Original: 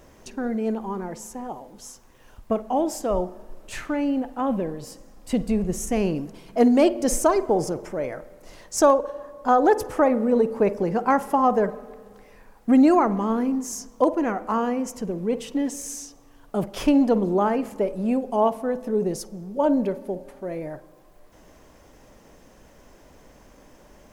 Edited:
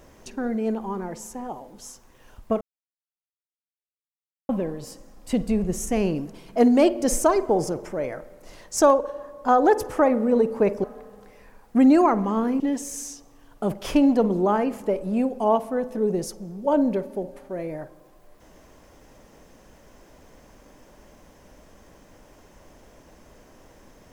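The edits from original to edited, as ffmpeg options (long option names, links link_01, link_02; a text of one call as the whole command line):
ffmpeg -i in.wav -filter_complex "[0:a]asplit=5[link_01][link_02][link_03][link_04][link_05];[link_01]atrim=end=2.61,asetpts=PTS-STARTPTS,afade=type=out:start_time=2.606:duration=0.004:curve=hsin[link_06];[link_02]atrim=start=2.61:end=4.49,asetpts=PTS-STARTPTS,volume=0[link_07];[link_03]atrim=start=4.49:end=10.842,asetpts=PTS-STARTPTS,afade=type=in:duration=0.004:curve=hsin[link_08];[link_04]atrim=start=11.768:end=13.532[link_09];[link_05]atrim=start=15.518[link_10];[link_06][link_07][link_08]concat=n=3:v=0:a=1[link_11];[link_11][link_09]acrossfade=duration=0.004:curve1=hsin:curve2=hsin[link_12];[link_12][link_10]acrossfade=duration=0.004:curve1=hsin:curve2=hsin" out.wav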